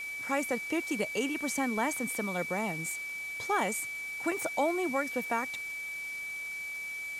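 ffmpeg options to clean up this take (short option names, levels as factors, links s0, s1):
-af "adeclick=t=4,bandreject=f=2300:w=30,afwtdn=0.0032"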